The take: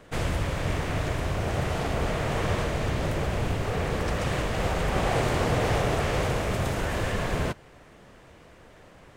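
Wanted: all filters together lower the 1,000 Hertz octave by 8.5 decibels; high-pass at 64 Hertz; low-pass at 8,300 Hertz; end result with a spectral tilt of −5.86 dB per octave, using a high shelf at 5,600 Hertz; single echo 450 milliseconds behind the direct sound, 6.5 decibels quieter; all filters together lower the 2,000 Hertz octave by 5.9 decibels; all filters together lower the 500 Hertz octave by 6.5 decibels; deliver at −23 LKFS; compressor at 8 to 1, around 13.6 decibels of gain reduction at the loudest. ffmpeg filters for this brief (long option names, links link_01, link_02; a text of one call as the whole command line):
ffmpeg -i in.wav -af "highpass=64,lowpass=8300,equalizer=frequency=500:width_type=o:gain=-5.5,equalizer=frequency=1000:width_type=o:gain=-8.5,equalizer=frequency=2000:width_type=o:gain=-4,highshelf=frequency=5600:gain=-3,acompressor=threshold=-39dB:ratio=8,aecho=1:1:450:0.473,volume=19.5dB" out.wav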